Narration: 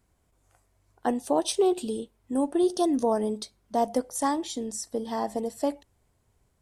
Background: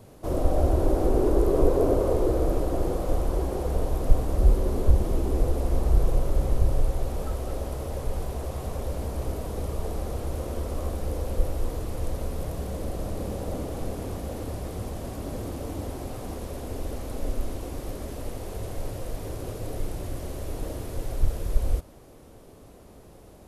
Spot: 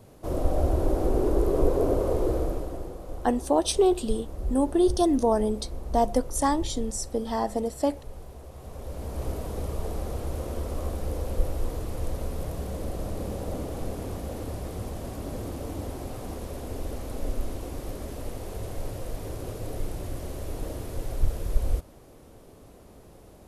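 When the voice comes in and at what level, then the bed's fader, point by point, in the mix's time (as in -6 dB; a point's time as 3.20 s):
2.20 s, +2.0 dB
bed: 2.35 s -2 dB
2.94 s -12 dB
8.51 s -12 dB
9.25 s -1 dB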